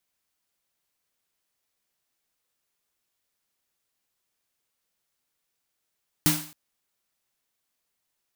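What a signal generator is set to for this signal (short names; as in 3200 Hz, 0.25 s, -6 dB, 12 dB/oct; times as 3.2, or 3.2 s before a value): snare drum length 0.27 s, tones 160 Hz, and 300 Hz, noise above 590 Hz, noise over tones 1 dB, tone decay 0.40 s, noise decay 0.48 s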